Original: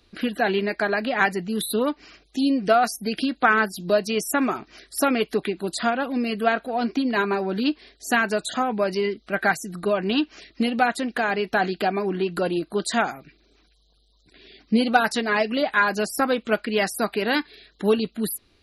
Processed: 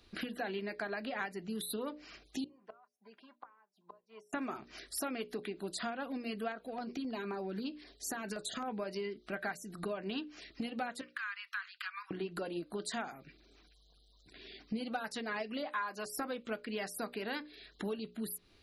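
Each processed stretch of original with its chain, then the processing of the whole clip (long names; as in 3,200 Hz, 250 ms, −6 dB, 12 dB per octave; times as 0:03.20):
0:02.44–0:04.33: resonant band-pass 1,000 Hz, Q 12 + comb filter 5 ms, depth 48% + gate with flip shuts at −32 dBFS, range −25 dB
0:06.52–0:08.68: downward compressor 3 to 1, threshold −23 dBFS + auto-filter notch saw down 3.8 Hz 560–3,700 Hz
0:11.01–0:12.11: Butterworth high-pass 1,100 Hz 72 dB per octave + high-shelf EQ 2,700 Hz −11 dB
0:15.66–0:16.06: high-pass filter 300 Hz 6 dB per octave + parametric band 1,100 Hz +12 dB 0.31 octaves
whole clip: downward compressor 4 to 1, threshold −35 dBFS; mains-hum notches 60/120/180/240/300/360/420/480/540/600 Hz; level −3 dB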